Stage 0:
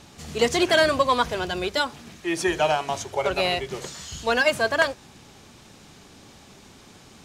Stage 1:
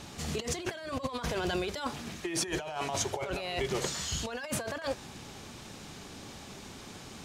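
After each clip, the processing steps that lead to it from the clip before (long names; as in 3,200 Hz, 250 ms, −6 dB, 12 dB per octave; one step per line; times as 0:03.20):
compressor whose output falls as the input rises −31 dBFS, ratio −1
level −4 dB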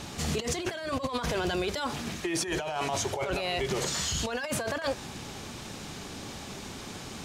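brickwall limiter −26 dBFS, peak gain reduction 7.5 dB
level +5.5 dB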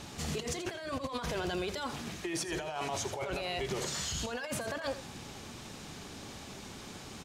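single-tap delay 83 ms −13 dB
level −5.5 dB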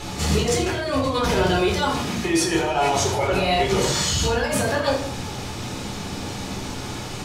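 rectangular room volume 460 cubic metres, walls furnished, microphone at 4.1 metres
level +8 dB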